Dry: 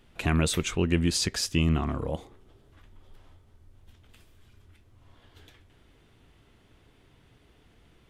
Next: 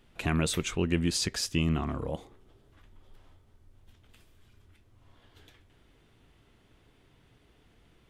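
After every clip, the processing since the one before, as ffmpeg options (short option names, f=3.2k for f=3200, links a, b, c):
-af "equalizer=f=79:w=5.3:g=-4,volume=-2.5dB"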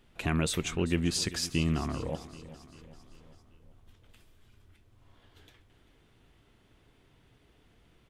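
-af "aecho=1:1:392|784|1176|1568|1960:0.15|0.0793|0.042|0.0223|0.0118,volume=-1dB"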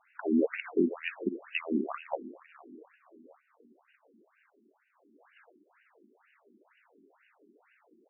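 -af "afftfilt=real='re*between(b*sr/1024,270*pow(2100/270,0.5+0.5*sin(2*PI*2.1*pts/sr))/1.41,270*pow(2100/270,0.5+0.5*sin(2*PI*2.1*pts/sr))*1.41)':imag='im*between(b*sr/1024,270*pow(2100/270,0.5+0.5*sin(2*PI*2.1*pts/sr))/1.41,270*pow(2100/270,0.5+0.5*sin(2*PI*2.1*pts/sr))*1.41)':win_size=1024:overlap=0.75,volume=8.5dB"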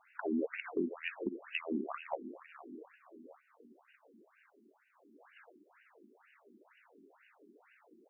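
-af "acompressor=threshold=-39dB:ratio=2,volume=1dB"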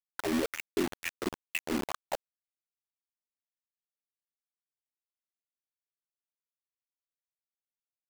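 -af "acrusher=bits=5:mix=0:aa=0.000001,volume=3.5dB"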